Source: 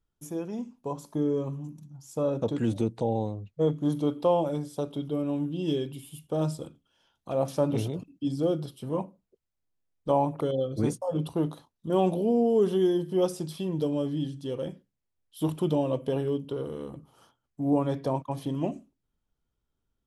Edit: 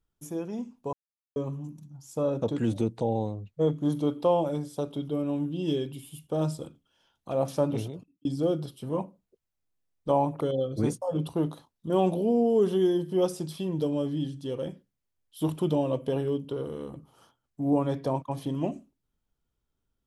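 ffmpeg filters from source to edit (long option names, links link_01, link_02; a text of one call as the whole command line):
ffmpeg -i in.wav -filter_complex "[0:a]asplit=4[link_01][link_02][link_03][link_04];[link_01]atrim=end=0.93,asetpts=PTS-STARTPTS,afade=type=out:start_time=0.926:duration=0.004:curve=hsin[link_05];[link_02]atrim=start=0.93:end=1.36,asetpts=PTS-STARTPTS,volume=0[link_06];[link_03]atrim=start=1.36:end=8.25,asetpts=PTS-STARTPTS,afade=type=in:duration=0.004:curve=hsin,afade=type=out:start_time=6.25:duration=0.64[link_07];[link_04]atrim=start=8.25,asetpts=PTS-STARTPTS,afade=type=in:duration=0.004:curve=hsin[link_08];[link_05][link_06][link_07][link_08]concat=n=4:v=0:a=1" out.wav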